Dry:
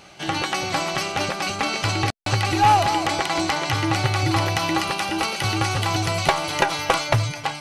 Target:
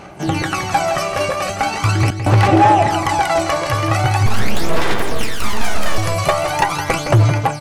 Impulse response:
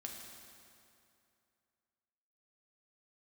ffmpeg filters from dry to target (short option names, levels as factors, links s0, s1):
-filter_complex "[0:a]equalizer=f=3800:t=o:w=1.4:g=-9.5,asettb=1/sr,asplit=3[s0][s1][s2];[s0]atrim=end=4.264[s3];[s1]atrim=start=4.26:end=5.98,asetpts=PTS-STARTPTS,afade=t=in:d=0.004:c=qsin,afade=t=out:st=1.716:d=0.004:c=qsin,aeval=exprs='abs(val(0))':c=same[s4];[s2]atrim=start=5.976[s5];[s3][s4]acrossfade=d=0.004:c1=hsin:c2=qsin[s6];[s6][s5]acrossfade=d=0.004:c1=qsin:c2=hsin,aphaser=in_gain=1:out_gain=1:delay=1.8:decay=0.64:speed=0.41:type=sinusoidal,volume=3.98,asoftclip=hard,volume=0.251,asplit=3[s7][s8][s9];[s7]afade=t=out:st=2.47:d=0.02[s10];[s8]highpass=140,equalizer=f=620:t=q:w=4:g=8,equalizer=f=1600:t=q:w=4:g=-4,equalizer=f=4500:t=q:w=4:g=-7,equalizer=f=6600:t=q:w=4:g=-4,lowpass=f=8500:w=0.5412,lowpass=f=8500:w=1.3066,afade=t=in:st=2.47:d=0.02,afade=t=out:st=2.89:d=0.02[s11];[s9]afade=t=in:st=2.89:d=0.02[s12];[s10][s11][s12]amix=inputs=3:normalize=0,aecho=1:1:165:0.355,volume=1.68"